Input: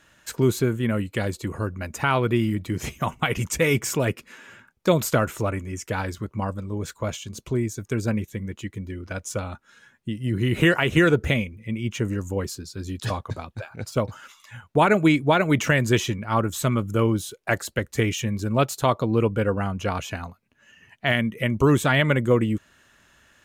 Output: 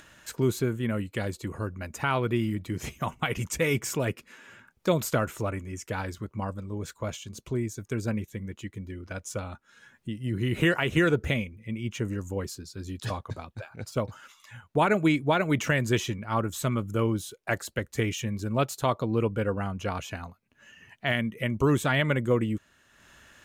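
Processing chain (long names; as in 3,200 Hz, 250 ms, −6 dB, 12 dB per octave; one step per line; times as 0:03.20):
upward compression, threshold −40 dBFS
level −5 dB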